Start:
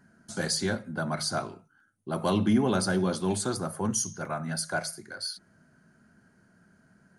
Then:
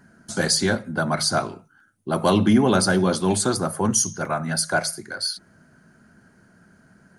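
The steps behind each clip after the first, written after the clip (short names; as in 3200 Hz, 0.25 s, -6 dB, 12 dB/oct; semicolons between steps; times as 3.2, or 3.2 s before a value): harmonic-percussive split percussive +3 dB; gain +6 dB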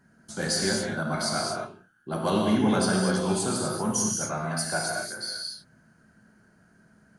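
non-linear reverb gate 0.28 s flat, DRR -2 dB; gain -9 dB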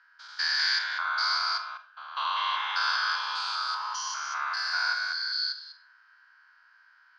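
stepped spectrum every 0.2 s; Chebyshev band-pass 990–5000 Hz, order 4; Schroeder reverb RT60 0.37 s, combs from 30 ms, DRR 9.5 dB; gain +7.5 dB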